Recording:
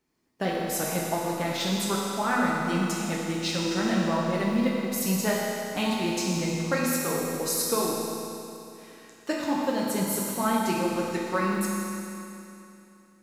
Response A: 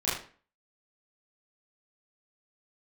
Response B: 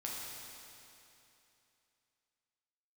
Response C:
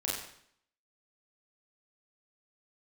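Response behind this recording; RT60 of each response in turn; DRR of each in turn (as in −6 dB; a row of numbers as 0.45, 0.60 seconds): B; 0.40, 2.9, 0.65 seconds; −10.0, −4.5, −5.5 decibels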